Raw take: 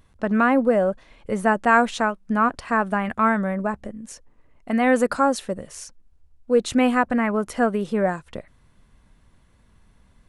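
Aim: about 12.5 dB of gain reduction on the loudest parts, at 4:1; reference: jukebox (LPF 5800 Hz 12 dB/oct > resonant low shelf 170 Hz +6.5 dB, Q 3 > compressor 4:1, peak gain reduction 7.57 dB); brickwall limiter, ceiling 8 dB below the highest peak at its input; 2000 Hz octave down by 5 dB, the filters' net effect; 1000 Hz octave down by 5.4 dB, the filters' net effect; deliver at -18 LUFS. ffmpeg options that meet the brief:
-af "equalizer=f=1k:t=o:g=-6,equalizer=f=2k:t=o:g=-4,acompressor=threshold=-30dB:ratio=4,alimiter=level_in=1dB:limit=-24dB:level=0:latency=1,volume=-1dB,lowpass=5.8k,lowshelf=f=170:t=q:w=3:g=6.5,acompressor=threshold=-38dB:ratio=4,volume=25.5dB"

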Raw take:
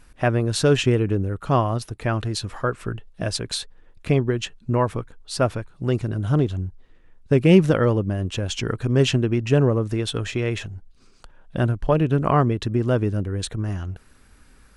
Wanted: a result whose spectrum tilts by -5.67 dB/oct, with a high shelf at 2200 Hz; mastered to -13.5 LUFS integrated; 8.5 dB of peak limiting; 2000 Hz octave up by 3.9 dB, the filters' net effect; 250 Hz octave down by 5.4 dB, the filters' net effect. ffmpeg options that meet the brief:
-af "equalizer=f=250:t=o:g=-8.5,equalizer=f=2k:t=o:g=7.5,highshelf=f=2.2k:g=-3.5,volume=13dB,alimiter=limit=-1.5dB:level=0:latency=1"

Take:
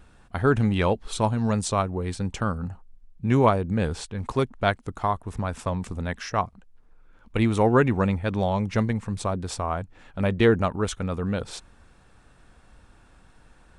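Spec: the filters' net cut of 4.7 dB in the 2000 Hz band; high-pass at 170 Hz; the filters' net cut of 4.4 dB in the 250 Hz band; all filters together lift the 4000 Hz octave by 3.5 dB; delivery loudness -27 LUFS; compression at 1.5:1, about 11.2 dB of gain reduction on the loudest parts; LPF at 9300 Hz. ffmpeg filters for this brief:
-af "highpass=170,lowpass=9.3k,equalizer=f=250:t=o:g=-4,equalizer=f=2k:t=o:g=-8,equalizer=f=4k:t=o:g=7,acompressor=threshold=-48dB:ratio=1.5,volume=11dB"

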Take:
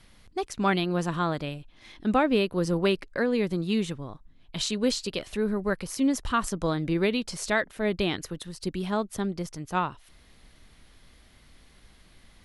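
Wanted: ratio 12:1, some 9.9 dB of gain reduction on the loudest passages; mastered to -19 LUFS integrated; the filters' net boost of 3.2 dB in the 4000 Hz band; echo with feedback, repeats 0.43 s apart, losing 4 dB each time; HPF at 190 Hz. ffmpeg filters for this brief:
-af "highpass=190,equalizer=f=4k:t=o:g=4,acompressor=threshold=-29dB:ratio=12,aecho=1:1:430|860|1290|1720|2150|2580|3010|3440|3870:0.631|0.398|0.25|0.158|0.0994|0.0626|0.0394|0.0249|0.0157,volume=14dB"

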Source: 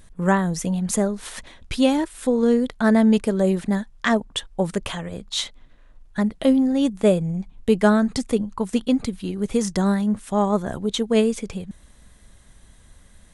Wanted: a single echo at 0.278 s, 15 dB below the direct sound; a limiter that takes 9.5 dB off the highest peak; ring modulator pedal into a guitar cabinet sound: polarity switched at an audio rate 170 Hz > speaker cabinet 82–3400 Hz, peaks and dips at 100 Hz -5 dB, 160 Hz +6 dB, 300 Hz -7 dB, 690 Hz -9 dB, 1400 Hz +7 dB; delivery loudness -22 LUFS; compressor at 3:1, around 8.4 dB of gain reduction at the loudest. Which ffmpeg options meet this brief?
-af "acompressor=threshold=-24dB:ratio=3,alimiter=limit=-20dB:level=0:latency=1,aecho=1:1:278:0.178,aeval=exprs='val(0)*sgn(sin(2*PI*170*n/s))':c=same,highpass=82,equalizer=f=100:t=q:w=4:g=-5,equalizer=f=160:t=q:w=4:g=6,equalizer=f=300:t=q:w=4:g=-7,equalizer=f=690:t=q:w=4:g=-9,equalizer=f=1.4k:t=q:w=4:g=7,lowpass=f=3.4k:w=0.5412,lowpass=f=3.4k:w=1.3066,volume=10.5dB"

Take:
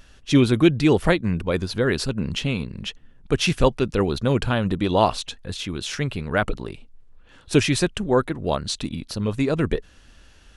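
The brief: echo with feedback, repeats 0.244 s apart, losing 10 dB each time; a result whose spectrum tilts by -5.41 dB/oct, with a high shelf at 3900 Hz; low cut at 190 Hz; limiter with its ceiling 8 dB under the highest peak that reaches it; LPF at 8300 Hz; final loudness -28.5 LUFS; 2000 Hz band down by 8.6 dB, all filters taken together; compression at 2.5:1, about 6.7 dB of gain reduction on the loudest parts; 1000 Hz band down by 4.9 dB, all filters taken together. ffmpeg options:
-af "highpass=190,lowpass=8.3k,equalizer=f=1k:t=o:g=-4,equalizer=f=2k:t=o:g=-9,highshelf=f=3.9k:g=-6,acompressor=threshold=-23dB:ratio=2.5,alimiter=limit=-19.5dB:level=0:latency=1,aecho=1:1:244|488|732|976:0.316|0.101|0.0324|0.0104,volume=3dB"

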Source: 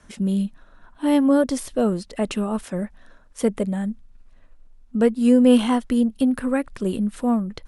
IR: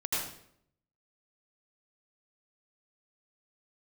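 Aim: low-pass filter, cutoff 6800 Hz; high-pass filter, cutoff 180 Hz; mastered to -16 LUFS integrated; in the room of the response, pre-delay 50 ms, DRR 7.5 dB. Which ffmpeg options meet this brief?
-filter_complex "[0:a]highpass=180,lowpass=6.8k,asplit=2[a][b];[1:a]atrim=start_sample=2205,adelay=50[c];[b][c]afir=irnorm=-1:irlink=0,volume=-14dB[d];[a][d]amix=inputs=2:normalize=0,volume=6dB"

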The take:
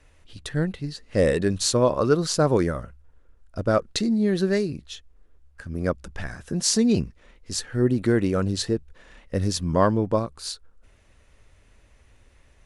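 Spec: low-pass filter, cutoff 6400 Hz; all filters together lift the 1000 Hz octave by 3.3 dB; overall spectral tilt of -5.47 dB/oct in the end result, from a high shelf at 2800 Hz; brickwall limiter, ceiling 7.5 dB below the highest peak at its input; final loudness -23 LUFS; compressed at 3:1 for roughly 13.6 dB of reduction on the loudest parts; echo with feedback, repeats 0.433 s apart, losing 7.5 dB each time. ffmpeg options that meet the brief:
-af "lowpass=6.4k,equalizer=f=1k:t=o:g=5,highshelf=f=2.8k:g=-7.5,acompressor=threshold=-32dB:ratio=3,alimiter=level_in=2dB:limit=-24dB:level=0:latency=1,volume=-2dB,aecho=1:1:433|866|1299|1732|2165:0.422|0.177|0.0744|0.0312|0.0131,volume=13.5dB"

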